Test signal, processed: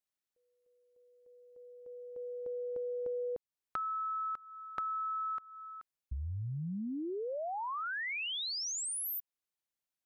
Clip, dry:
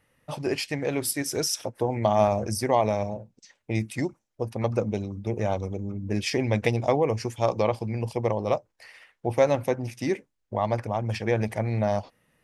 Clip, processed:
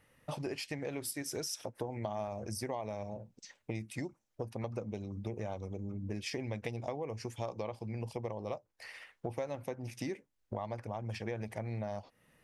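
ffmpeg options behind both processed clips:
ffmpeg -i in.wav -af "acompressor=threshold=-37dB:ratio=5" out.wav

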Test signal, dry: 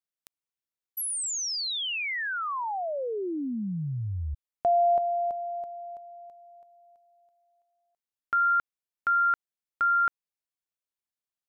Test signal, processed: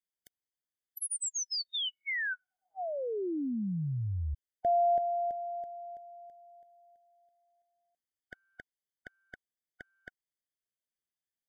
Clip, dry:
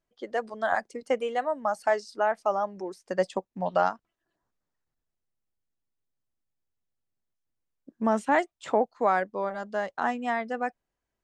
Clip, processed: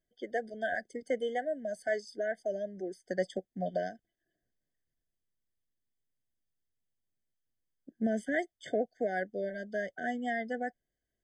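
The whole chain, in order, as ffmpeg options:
ffmpeg -i in.wav -filter_complex "[0:a]equalizer=frequency=620:width=1.5:gain=-2.5,asplit=2[link_01][link_02];[link_02]alimiter=limit=-20.5dB:level=0:latency=1:release=87,volume=1.5dB[link_03];[link_01][link_03]amix=inputs=2:normalize=0,afftfilt=real='re*eq(mod(floor(b*sr/1024/740),2),0)':imag='im*eq(mod(floor(b*sr/1024/740),2),0)':win_size=1024:overlap=0.75,volume=-8.5dB" out.wav

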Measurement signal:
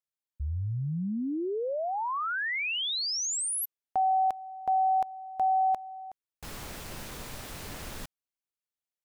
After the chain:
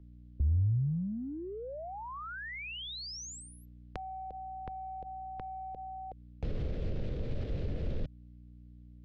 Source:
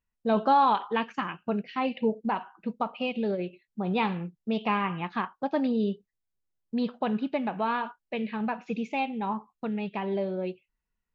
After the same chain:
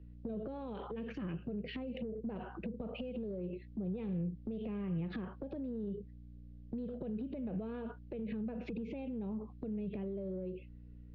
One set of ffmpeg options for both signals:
ffmpeg -i in.wav -filter_complex "[0:a]lowpass=frequency=4100:width=0.5412,lowpass=frequency=4100:width=1.3066,lowshelf=frequency=680:width_type=q:width=3:gain=10.5,acompressor=threshold=-36dB:ratio=6:attack=2.5:release=59:knee=6:detection=peak,aeval=exprs='val(0)+0.001*(sin(2*PI*60*n/s)+sin(2*PI*2*60*n/s)/2+sin(2*PI*3*60*n/s)/3+sin(2*PI*4*60*n/s)/4+sin(2*PI*5*60*n/s)/5)':channel_layout=same,acrossover=split=140[link_01][link_02];[link_02]acompressor=threshold=-51dB:ratio=6:attack=3.3:release=149:knee=2.83:detection=peak[link_03];[link_01][link_03]amix=inputs=2:normalize=0,volume=9dB" out.wav

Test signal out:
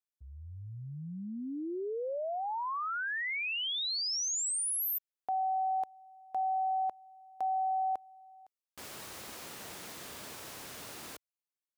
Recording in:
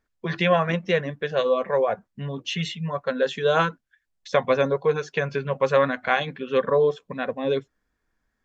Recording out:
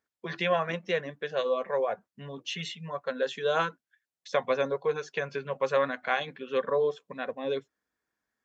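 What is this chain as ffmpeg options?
ffmpeg -i in.wav -af "highpass=90,bass=frequency=250:gain=-7,treble=frequency=4000:gain=2,volume=-6dB" out.wav

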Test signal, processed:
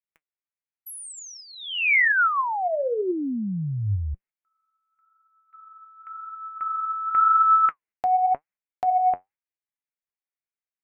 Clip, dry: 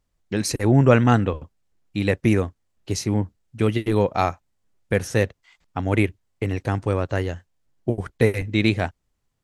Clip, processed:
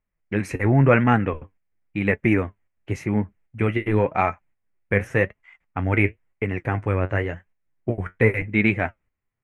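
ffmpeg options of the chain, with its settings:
ffmpeg -i in.wav -af "flanger=delay=4.6:depth=6.5:regen=59:speed=0.93:shape=sinusoidal,acontrast=37,highshelf=frequency=3100:width_type=q:width=3:gain=-12,agate=range=-8dB:threshold=-49dB:ratio=16:detection=peak,volume=-2dB" out.wav

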